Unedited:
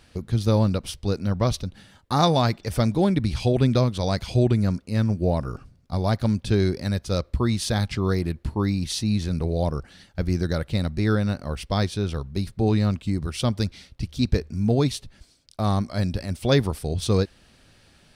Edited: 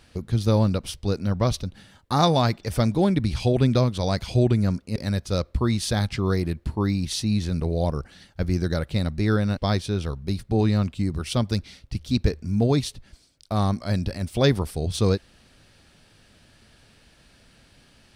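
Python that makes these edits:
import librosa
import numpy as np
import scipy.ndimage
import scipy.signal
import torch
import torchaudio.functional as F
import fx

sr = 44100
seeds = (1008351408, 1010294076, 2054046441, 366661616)

y = fx.edit(x, sr, fx.cut(start_s=4.96, length_s=1.79),
    fx.cut(start_s=11.36, length_s=0.29), tone=tone)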